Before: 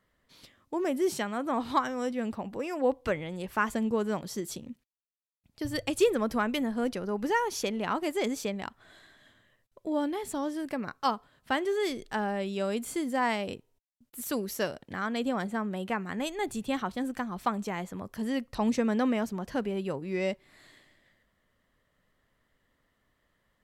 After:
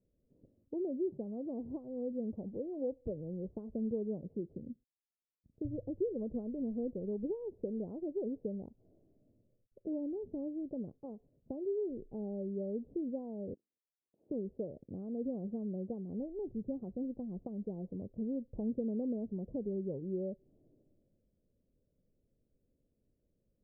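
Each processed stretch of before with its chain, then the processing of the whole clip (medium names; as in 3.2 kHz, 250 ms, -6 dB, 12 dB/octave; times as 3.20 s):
13.54–14.30 s: frequency inversion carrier 2.8 kHz + high-pass 180 Hz
whole clip: dynamic bell 280 Hz, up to -3 dB, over -39 dBFS, Q 1.4; compression 4:1, threshold -29 dBFS; steep low-pass 530 Hz 36 dB/octave; trim -2 dB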